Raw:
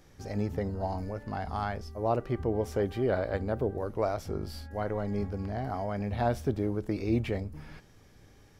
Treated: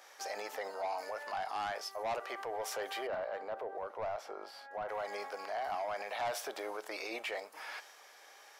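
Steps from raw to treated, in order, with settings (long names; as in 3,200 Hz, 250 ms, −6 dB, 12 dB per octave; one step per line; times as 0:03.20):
high-pass filter 660 Hz 24 dB per octave
soft clipping −34 dBFS, distortion −8 dB
brickwall limiter −41.5 dBFS, peak gain reduction 7.5 dB
0:03.07–0:04.89: low-pass filter 1,100 Hz 6 dB per octave
one half of a high-frequency compander decoder only
level +10 dB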